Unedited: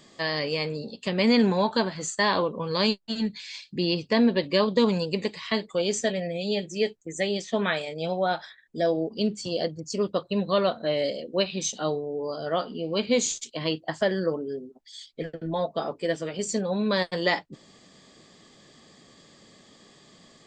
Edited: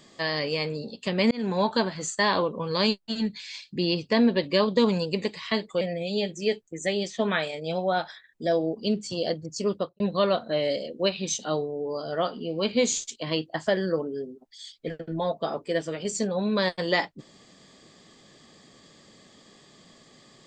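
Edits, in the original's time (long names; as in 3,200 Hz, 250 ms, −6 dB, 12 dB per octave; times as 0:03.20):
0:01.31–0:01.62: fade in
0:05.81–0:06.15: remove
0:10.09–0:10.34: fade out and dull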